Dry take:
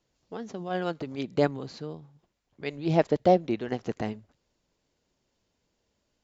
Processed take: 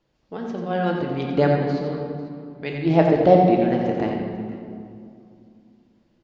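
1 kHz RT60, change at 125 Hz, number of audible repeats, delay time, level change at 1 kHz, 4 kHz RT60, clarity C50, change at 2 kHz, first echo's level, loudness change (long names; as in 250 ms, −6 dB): 2.4 s, +9.5 dB, 2, 89 ms, +8.5 dB, 1.6 s, 1.5 dB, +7.0 dB, −7.0 dB, +7.5 dB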